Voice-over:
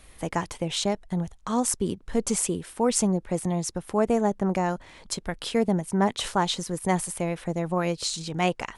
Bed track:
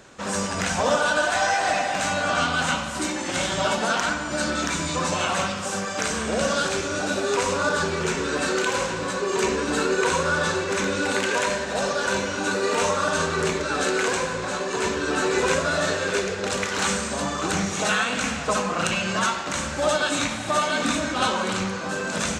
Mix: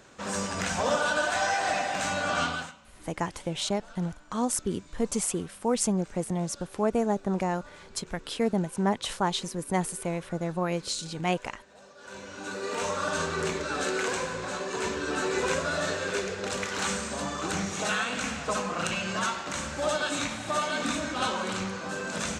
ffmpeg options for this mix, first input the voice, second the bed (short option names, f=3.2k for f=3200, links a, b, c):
-filter_complex "[0:a]adelay=2850,volume=-3dB[a];[1:a]volume=17dB,afade=t=out:st=2.45:d=0.27:silence=0.0707946,afade=t=in:st=11.96:d=1.17:silence=0.0794328[b];[a][b]amix=inputs=2:normalize=0"